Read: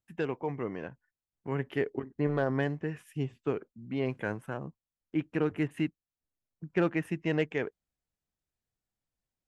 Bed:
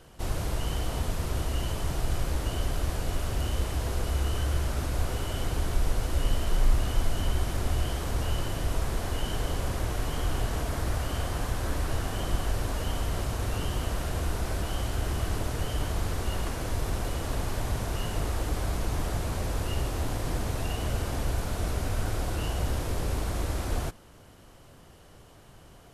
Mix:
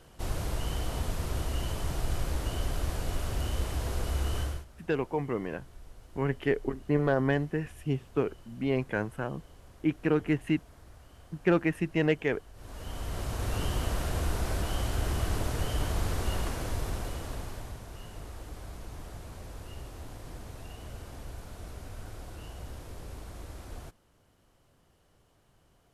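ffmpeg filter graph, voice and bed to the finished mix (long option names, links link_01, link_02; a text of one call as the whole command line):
ffmpeg -i stem1.wav -i stem2.wav -filter_complex "[0:a]adelay=4700,volume=3dB[link_01];[1:a]volume=20.5dB,afade=type=out:start_time=4.4:duration=0.25:silence=0.0891251,afade=type=in:start_time=12.54:duration=1.09:silence=0.0707946,afade=type=out:start_time=16.32:duration=1.48:silence=0.223872[link_02];[link_01][link_02]amix=inputs=2:normalize=0" out.wav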